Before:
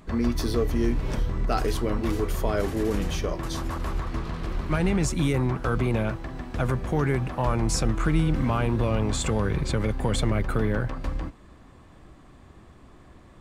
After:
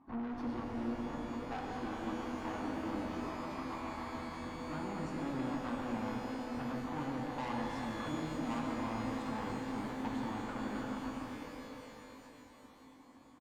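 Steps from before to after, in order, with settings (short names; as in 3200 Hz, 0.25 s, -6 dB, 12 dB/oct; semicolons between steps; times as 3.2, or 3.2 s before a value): hard clip -19 dBFS, distortion -16 dB; double band-pass 480 Hz, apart 1.8 oct; comb 2.7 ms, depth 44%; tube stage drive 40 dB, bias 0.75; shimmer reverb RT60 3.8 s, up +12 st, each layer -8 dB, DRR 0 dB; gain +3 dB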